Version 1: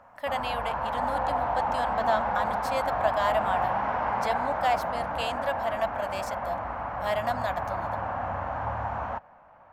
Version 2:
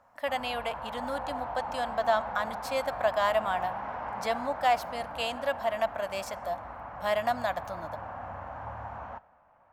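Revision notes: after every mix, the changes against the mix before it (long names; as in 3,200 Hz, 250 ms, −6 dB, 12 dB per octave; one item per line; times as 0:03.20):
background −9.5 dB
reverb: on, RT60 1.2 s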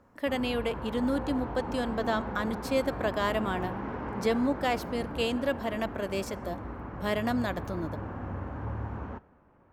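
master: add low shelf with overshoot 510 Hz +10 dB, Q 3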